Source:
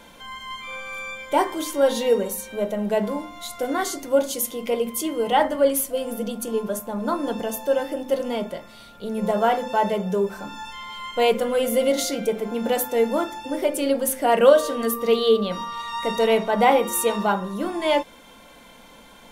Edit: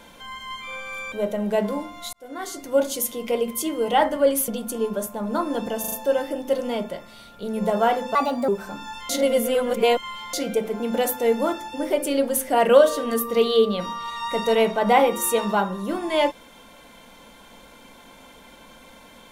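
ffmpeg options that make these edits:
-filter_complex "[0:a]asplit=11[a][b][c][d][e][f][g][h][i][j][k];[a]atrim=end=1.122[l];[b]atrim=start=2.508:end=3.52,asetpts=PTS-STARTPTS,afade=t=out:st=1.008:d=0.004:c=hsin[m];[c]atrim=start=3.52:end=5.872,asetpts=PTS-STARTPTS,afade=t=in:d=0.7[n];[d]atrim=start=6.208:end=7.572[o];[e]atrim=start=7.528:end=7.572[p];[f]atrim=start=7.528:end=7.572[q];[g]atrim=start=7.528:end=9.764[r];[h]atrim=start=9.76:end=10.2,asetpts=PTS-STARTPTS,asetrate=58212,aresample=44100[s];[i]atrim=start=10.196:end=10.812[t];[j]atrim=start=10.808:end=12.052,asetpts=PTS-STARTPTS,areverse[u];[k]atrim=start=12.048[v];[m][n]concat=n=2:v=0:a=1[w];[l][w]acrossfade=d=0.004:c1=hsin:c2=hsin[x];[x][o]acrossfade=d=0.004:c1=hsin:c2=hsin[y];[y][p]acrossfade=d=0.004:c1=hsin:c2=hsin[z];[z][q]acrossfade=d=0.004:c1=hsin:c2=hsin[aa];[aa][r]acrossfade=d=0.004:c1=hsin:c2=hsin[ab];[ab][s]acrossfade=d=0.004:c1=hsin:c2=hsin[ac];[ac][t]acrossfade=d=0.004:c1=hsin:c2=hsin[ad];[ad][u]acrossfade=d=0.004:c1=hsin:c2=hsin[ae];[ae][v]acrossfade=d=0.004:c1=hsin:c2=hsin"

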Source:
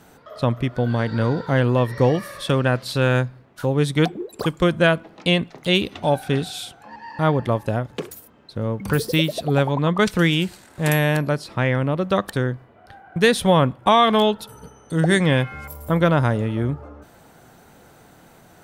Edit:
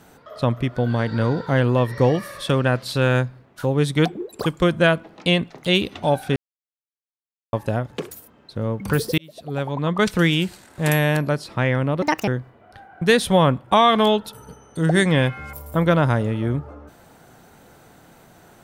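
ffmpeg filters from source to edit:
-filter_complex "[0:a]asplit=6[a][b][c][d][e][f];[a]atrim=end=6.36,asetpts=PTS-STARTPTS,afade=t=out:st=6.356:d=0.004:c=hsin[g];[b]atrim=start=6.36:end=7.53,asetpts=PTS-STARTPTS,volume=0[h];[c]atrim=start=7.53:end=9.18,asetpts=PTS-STARTPTS,afade=t=in:d=0.004:c=hsin,afade=t=out:st=1.646:d=0.004:c=hsin[i];[d]atrim=start=9.18:end=12.024,asetpts=PTS-STARTPTS,afade=t=in:d=0.92[j];[e]atrim=start=12.02:end=12.42,asetpts=PTS-STARTPTS,asetrate=69237,aresample=44100[k];[f]atrim=start=12.416[l];[g][h][i][j]concat=n=4:v=0:a=1[m];[m][k]acrossfade=d=0.004:c1=hsin:c2=hsin[n];[n][l]acrossfade=d=0.004:c1=hsin:c2=hsin"

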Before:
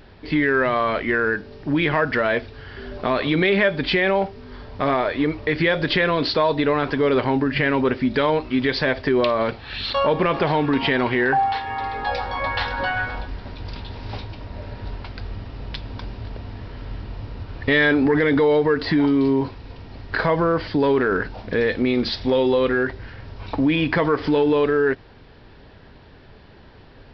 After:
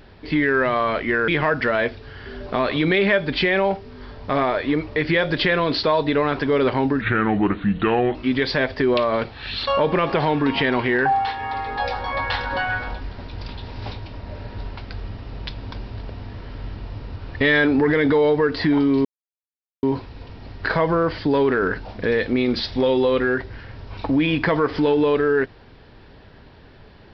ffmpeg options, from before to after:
-filter_complex "[0:a]asplit=5[a][b][c][d][e];[a]atrim=end=1.282[f];[b]atrim=start=1.788:end=7.524[g];[c]atrim=start=7.52:end=8.42,asetpts=PTS-STARTPTS,asetrate=34839,aresample=44100[h];[d]atrim=start=8.416:end=19.32,asetpts=PTS-STARTPTS,afade=t=out:st=10.9:d=0.004:c=hsin,apad=pad_dur=0.78[i];[e]atrim=start=19.32,asetpts=PTS-STARTPTS,afade=t=in:d=0.004:c=hsin[j];[f][g]acrossfade=d=0.004:c1=hsin:c2=hsin[k];[k][h]acrossfade=d=0.004:c1=hsin:c2=hsin[l];[i][j]concat=n=2:v=0:a=1[m];[l][m]acrossfade=d=0.004:c1=hsin:c2=hsin"

